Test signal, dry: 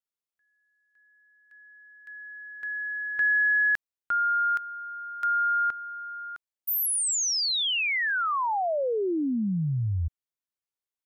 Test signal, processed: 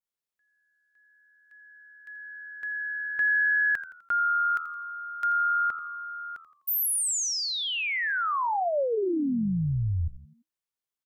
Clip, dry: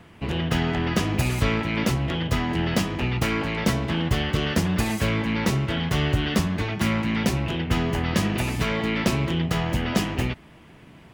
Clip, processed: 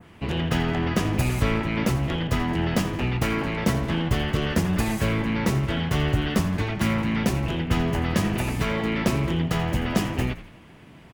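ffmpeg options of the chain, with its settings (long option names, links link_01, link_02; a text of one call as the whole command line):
ffmpeg -i in.wav -filter_complex "[0:a]asplit=5[link_01][link_02][link_03][link_04][link_05];[link_02]adelay=84,afreqshift=-79,volume=-14dB[link_06];[link_03]adelay=168,afreqshift=-158,volume=-21.7dB[link_07];[link_04]adelay=252,afreqshift=-237,volume=-29.5dB[link_08];[link_05]adelay=336,afreqshift=-316,volume=-37.2dB[link_09];[link_01][link_06][link_07][link_08][link_09]amix=inputs=5:normalize=0,adynamicequalizer=threshold=0.0112:dfrequency=4000:dqfactor=0.73:tfrequency=4000:tqfactor=0.73:attack=5:release=100:ratio=0.375:range=2.5:mode=cutabove:tftype=bell" out.wav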